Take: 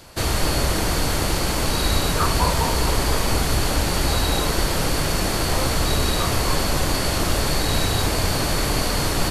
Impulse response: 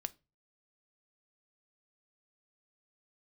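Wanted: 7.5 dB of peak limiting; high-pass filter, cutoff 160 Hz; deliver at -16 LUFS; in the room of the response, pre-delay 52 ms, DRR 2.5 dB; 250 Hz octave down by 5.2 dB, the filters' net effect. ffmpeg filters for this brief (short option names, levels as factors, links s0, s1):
-filter_complex "[0:a]highpass=160,equalizer=f=250:t=o:g=-6,alimiter=limit=0.15:level=0:latency=1,asplit=2[s0][s1];[1:a]atrim=start_sample=2205,adelay=52[s2];[s1][s2]afir=irnorm=-1:irlink=0,volume=0.891[s3];[s0][s3]amix=inputs=2:normalize=0,volume=2.24"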